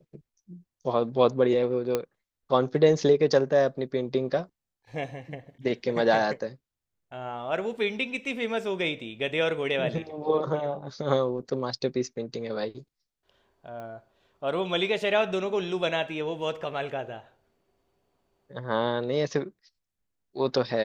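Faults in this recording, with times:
1.95 pop -12 dBFS
13.8 pop -29 dBFS

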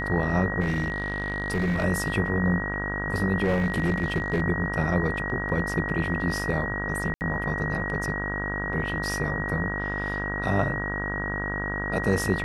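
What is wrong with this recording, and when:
buzz 50 Hz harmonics 34 -32 dBFS
tone 1900 Hz -30 dBFS
0.6–1.85 clipped -21 dBFS
3.44–4.42 clipped -19 dBFS
7.14–7.21 gap 69 ms

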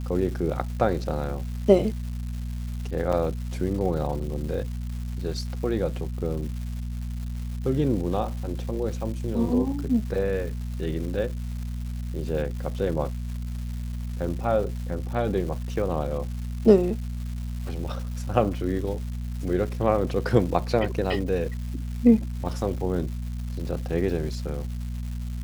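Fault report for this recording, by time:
crackle 440/s -36 dBFS
hum 60 Hz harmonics 4 -31 dBFS
3.12–3.13 gap 6.3 ms

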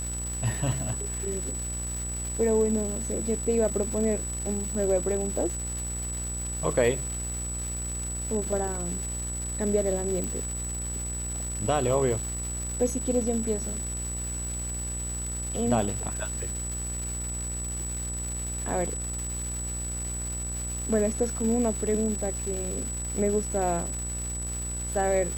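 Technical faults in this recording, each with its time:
buzz 60 Hz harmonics 35 -35 dBFS
crackle 480/s -33 dBFS
tone 7900 Hz -33 dBFS
10.24 pop

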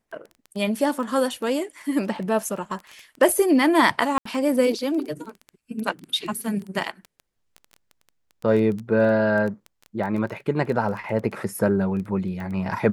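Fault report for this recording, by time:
crackle 10/s -29 dBFS
4.18–4.25 gap 74 ms

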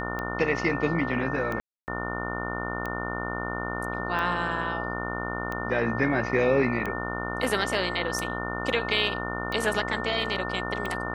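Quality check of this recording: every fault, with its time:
buzz 60 Hz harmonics 24 -33 dBFS
tick 45 rpm -19 dBFS
tone 1800 Hz -34 dBFS
1.6–1.88 gap 0.279 s

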